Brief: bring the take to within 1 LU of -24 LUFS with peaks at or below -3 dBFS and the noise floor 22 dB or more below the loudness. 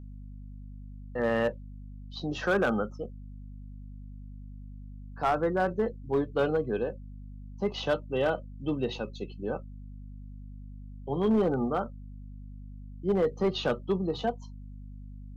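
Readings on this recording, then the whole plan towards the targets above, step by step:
clipped samples 0.8%; clipping level -19.5 dBFS; hum 50 Hz; highest harmonic 250 Hz; hum level -41 dBFS; loudness -30.0 LUFS; peak level -19.5 dBFS; loudness target -24.0 LUFS
-> clip repair -19.5 dBFS; de-hum 50 Hz, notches 5; trim +6 dB

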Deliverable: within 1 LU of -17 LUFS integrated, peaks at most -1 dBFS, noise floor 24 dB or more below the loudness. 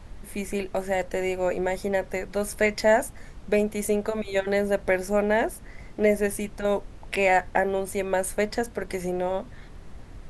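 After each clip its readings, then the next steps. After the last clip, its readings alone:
noise floor -45 dBFS; noise floor target -50 dBFS; loudness -26.0 LUFS; peak level -8.5 dBFS; loudness target -17.0 LUFS
-> noise print and reduce 6 dB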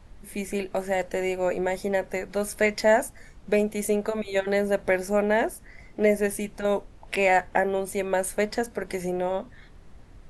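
noise floor -50 dBFS; loudness -26.0 LUFS; peak level -8.5 dBFS; loudness target -17.0 LUFS
-> trim +9 dB; peak limiter -1 dBFS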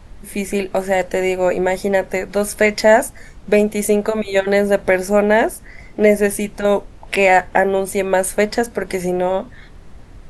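loudness -17.0 LUFS; peak level -1.0 dBFS; noise floor -41 dBFS

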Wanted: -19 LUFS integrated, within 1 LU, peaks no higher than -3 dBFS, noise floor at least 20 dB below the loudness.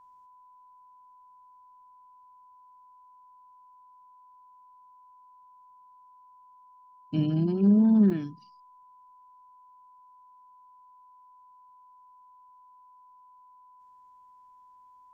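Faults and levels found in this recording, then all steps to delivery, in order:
dropouts 1; longest dropout 2.1 ms; steady tone 1 kHz; tone level -53 dBFS; loudness -23.5 LUFS; peak level -12.5 dBFS; loudness target -19.0 LUFS
-> interpolate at 8.10 s, 2.1 ms; band-stop 1 kHz, Q 30; trim +4.5 dB

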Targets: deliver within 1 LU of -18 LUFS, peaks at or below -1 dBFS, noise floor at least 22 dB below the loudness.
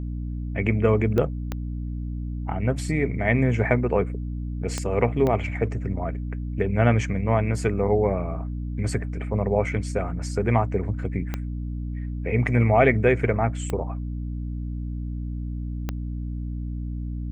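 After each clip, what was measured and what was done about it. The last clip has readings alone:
clicks found 7; hum 60 Hz; highest harmonic 300 Hz; hum level -27 dBFS; loudness -25.5 LUFS; peak level -5.0 dBFS; loudness target -18.0 LUFS
-> de-click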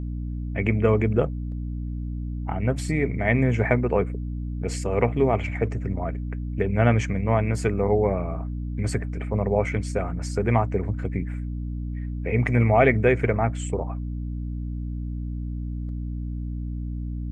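clicks found 0; hum 60 Hz; highest harmonic 300 Hz; hum level -27 dBFS
-> hum notches 60/120/180/240/300 Hz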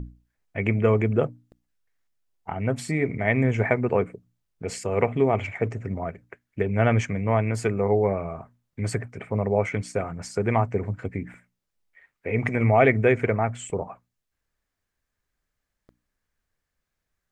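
hum not found; loudness -25.0 LUFS; peak level -5.0 dBFS; loudness target -18.0 LUFS
-> trim +7 dB; peak limiter -1 dBFS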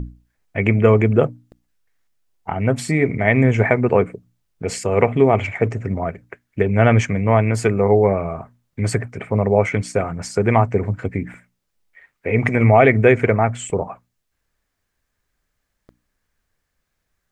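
loudness -18.0 LUFS; peak level -1.0 dBFS; noise floor -75 dBFS

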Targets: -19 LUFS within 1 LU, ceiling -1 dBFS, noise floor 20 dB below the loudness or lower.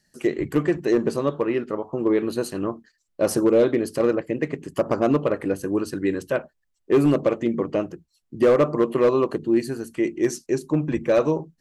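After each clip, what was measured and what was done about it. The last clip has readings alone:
clipped samples 0.7%; clipping level -11.5 dBFS; loudness -23.0 LUFS; peak level -11.5 dBFS; loudness target -19.0 LUFS
-> clip repair -11.5 dBFS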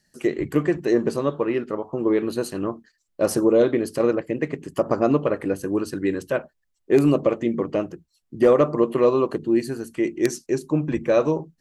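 clipped samples 0.0%; loudness -22.5 LUFS; peak level -2.5 dBFS; loudness target -19.0 LUFS
-> trim +3.5 dB; peak limiter -1 dBFS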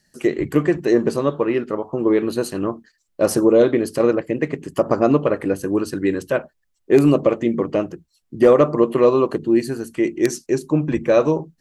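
loudness -19.0 LUFS; peak level -1.0 dBFS; noise floor -69 dBFS

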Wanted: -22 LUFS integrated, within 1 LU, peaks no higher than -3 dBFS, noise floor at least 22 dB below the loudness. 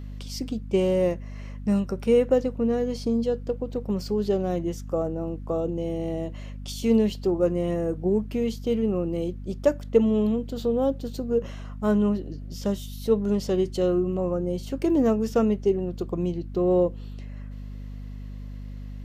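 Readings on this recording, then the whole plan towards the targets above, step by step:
hum 50 Hz; highest harmonic 250 Hz; hum level -34 dBFS; loudness -25.5 LUFS; peak level -7.5 dBFS; loudness target -22.0 LUFS
-> hum notches 50/100/150/200/250 Hz; trim +3.5 dB

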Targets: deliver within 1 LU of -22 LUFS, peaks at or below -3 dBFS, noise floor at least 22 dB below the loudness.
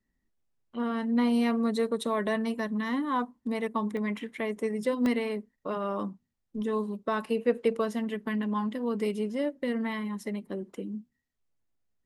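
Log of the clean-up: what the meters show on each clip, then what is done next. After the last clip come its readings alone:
dropouts 2; longest dropout 1.5 ms; loudness -30.5 LUFS; peak level -13.5 dBFS; loudness target -22.0 LUFS
-> interpolate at 3.97/5.06 s, 1.5 ms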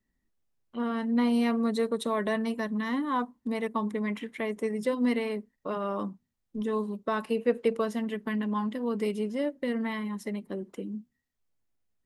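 dropouts 0; loudness -30.5 LUFS; peak level -13.5 dBFS; loudness target -22.0 LUFS
-> trim +8.5 dB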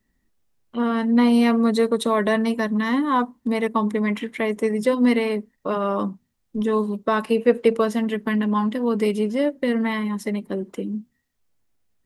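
loudness -22.0 LUFS; peak level -5.0 dBFS; noise floor -71 dBFS

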